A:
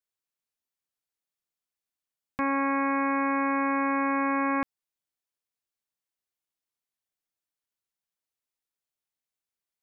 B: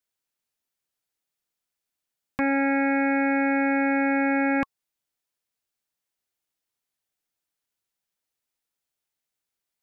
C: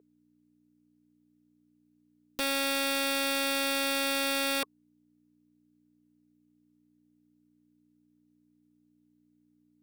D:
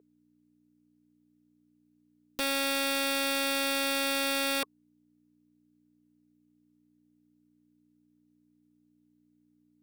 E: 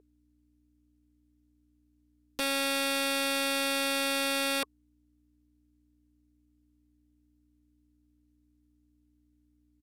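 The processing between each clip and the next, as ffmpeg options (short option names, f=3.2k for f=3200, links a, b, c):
-af "acontrast=26,bandreject=f=1.1k:w=15"
-af "aeval=exprs='val(0)+0.00501*(sin(2*PI*60*n/s)+sin(2*PI*2*60*n/s)/2+sin(2*PI*3*60*n/s)/3+sin(2*PI*4*60*n/s)/4+sin(2*PI*5*60*n/s)/5)':c=same,highpass=f=420:t=q:w=4.4,aeval=exprs='(mod(6.31*val(0)+1,2)-1)/6.31':c=same,volume=-7.5dB"
-af anull
-af "aeval=exprs='val(0)+0.000398*(sin(2*PI*60*n/s)+sin(2*PI*2*60*n/s)/2+sin(2*PI*3*60*n/s)/3+sin(2*PI*4*60*n/s)/4+sin(2*PI*5*60*n/s)/5)':c=same,aresample=32000,aresample=44100"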